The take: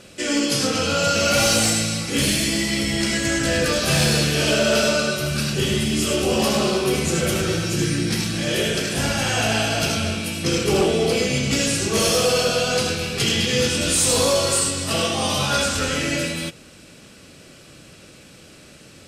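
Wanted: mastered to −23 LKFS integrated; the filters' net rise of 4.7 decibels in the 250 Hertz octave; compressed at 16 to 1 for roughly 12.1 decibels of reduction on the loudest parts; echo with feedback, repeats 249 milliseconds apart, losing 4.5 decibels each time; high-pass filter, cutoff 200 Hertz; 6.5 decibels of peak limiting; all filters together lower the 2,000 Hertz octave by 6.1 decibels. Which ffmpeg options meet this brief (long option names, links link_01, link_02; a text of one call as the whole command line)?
ffmpeg -i in.wav -af "highpass=200,equalizer=frequency=250:width_type=o:gain=8.5,equalizer=frequency=2000:width_type=o:gain=-9,acompressor=threshold=-25dB:ratio=16,alimiter=limit=-21.5dB:level=0:latency=1,aecho=1:1:249|498|747|996|1245|1494|1743|1992|2241:0.596|0.357|0.214|0.129|0.0772|0.0463|0.0278|0.0167|0.01,volume=5.5dB" out.wav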